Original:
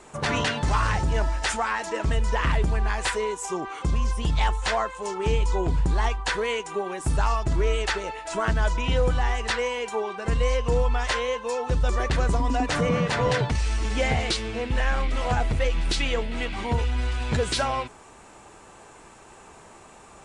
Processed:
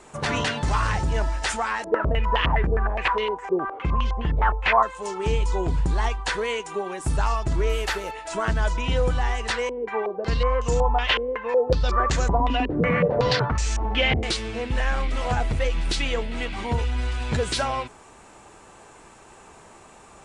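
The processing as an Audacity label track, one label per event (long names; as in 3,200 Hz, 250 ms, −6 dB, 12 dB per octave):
1.840000	4.830000	low-pass on a step sequencer 9.7 Hz 460–3,200 Hz
7.690000	8.110000	variable-slope delta modulation 64 kbit/s
9.690000	14.230000	low-pass on a step sequencer 5.4 Hz 360–7,000 Hz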